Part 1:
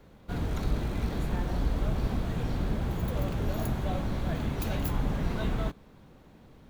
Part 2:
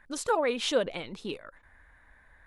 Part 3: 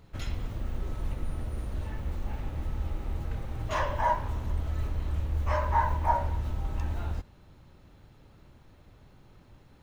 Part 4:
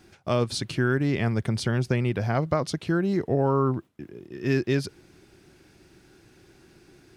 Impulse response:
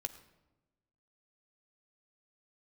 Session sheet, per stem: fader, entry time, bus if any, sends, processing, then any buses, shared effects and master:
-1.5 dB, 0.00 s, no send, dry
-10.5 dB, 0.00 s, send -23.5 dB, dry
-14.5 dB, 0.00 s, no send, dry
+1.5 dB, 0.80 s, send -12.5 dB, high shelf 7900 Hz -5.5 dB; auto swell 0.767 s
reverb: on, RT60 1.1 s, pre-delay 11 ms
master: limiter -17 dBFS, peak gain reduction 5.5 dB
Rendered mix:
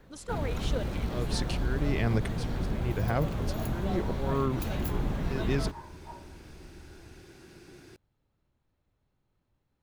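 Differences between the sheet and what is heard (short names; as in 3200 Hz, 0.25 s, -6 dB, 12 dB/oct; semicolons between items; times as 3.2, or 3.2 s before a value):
stem 3 -14.5 dB -> -21.0 dB; stem 4: missing high shelf 7900 Hz -5.5 dB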